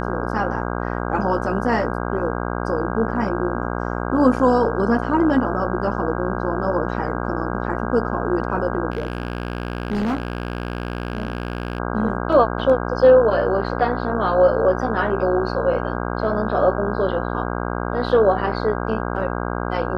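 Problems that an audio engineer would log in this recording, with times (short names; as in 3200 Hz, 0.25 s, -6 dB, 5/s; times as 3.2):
buzz 60 Hz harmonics 27 -25 dBFS
8.9–11.8 clipped -18.5 dBFS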